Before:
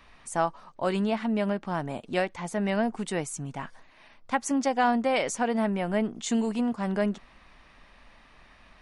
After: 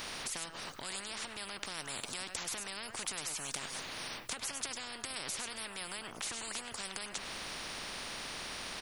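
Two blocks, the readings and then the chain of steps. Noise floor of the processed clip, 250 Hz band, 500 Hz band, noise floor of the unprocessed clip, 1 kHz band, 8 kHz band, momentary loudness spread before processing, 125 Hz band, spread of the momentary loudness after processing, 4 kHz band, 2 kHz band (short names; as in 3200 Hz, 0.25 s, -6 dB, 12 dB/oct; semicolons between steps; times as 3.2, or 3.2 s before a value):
-49 dBFS, -24.0 dB, -20.0 dB, -56 dBFS, -15.5 dB, +1.0 dB, 8 LU, -18.5 dB, 3 LU, +2.5 dB, -6.5 dB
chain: high shelf 7700 Hz +9 dB; compressor, threshold -35 dBFS, peak gain reduction 15.5 dB; limiter -31.5 dBFS, peak gain reduction 7.5 dB; on a send: echo 0.1 s -20.5 dB; on the sum: spectral compressor 10:1; gain +15.5 dB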